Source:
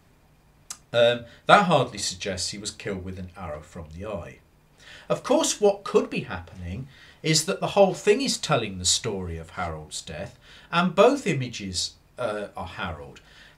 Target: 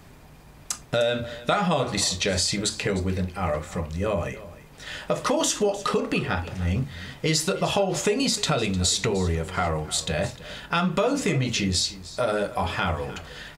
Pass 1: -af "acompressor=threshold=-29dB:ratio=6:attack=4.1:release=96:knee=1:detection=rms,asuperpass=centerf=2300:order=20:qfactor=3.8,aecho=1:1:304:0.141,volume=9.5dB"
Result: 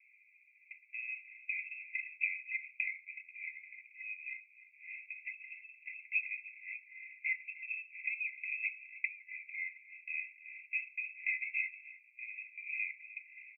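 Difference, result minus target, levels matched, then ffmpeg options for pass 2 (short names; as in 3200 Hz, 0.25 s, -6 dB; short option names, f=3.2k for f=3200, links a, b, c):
2000 Hz band +10.0 dB
-af "acompressor=threshold=-29dB:ratio=6:attack=4.1:release=96:knee=1:detection=rms,aecho=1:1:304:0.141,volume=9.5dB"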